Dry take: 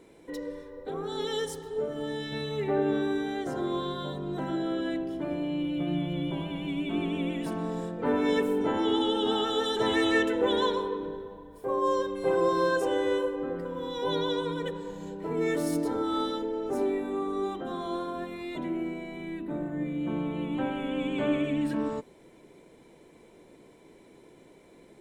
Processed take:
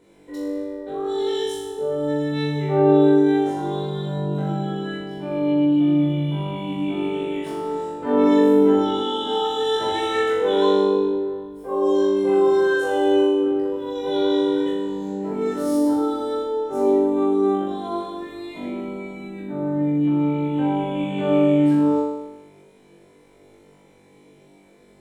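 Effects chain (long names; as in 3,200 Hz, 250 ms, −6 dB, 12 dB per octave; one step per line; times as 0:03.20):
flutter between parallel walls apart 3.5 metres, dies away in 1 s
level −3 dB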